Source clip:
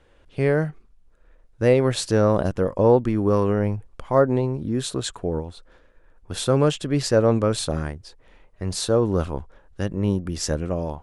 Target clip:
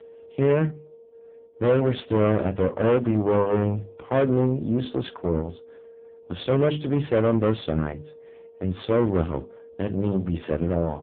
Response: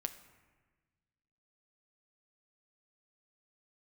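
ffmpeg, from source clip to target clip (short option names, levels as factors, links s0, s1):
-filter_complex "[0:a]aeval=exprs='val(0)+0.00891*sin(2*PI*460*n/s)':c=same,bandreject=f=50:t=h:w=6,bandreject=f=100:t=h:w=6,bandreject=f=150:t=h:w=6,bandreject=f=200:t=h:w=6,bandreject=f=250:t=h:w=6,bandreject=f=300:t=h:w=6,bandreject=f=350:t=h:w=6,bandreject=f=400:t=h:w=6,aeval=exprs='(tanh(11.2*val(0)+0.6)-tanh(0.6))/11.2':c=same,asplit=2[s0][s1];[s1]aecho=0:1:12|47:0.2|0.126[s2];[s0][s2]amix=inputs=2:normalize=0,volume=1.88" -ar 8000 -c:a libopencore_amrnb -b:a 5150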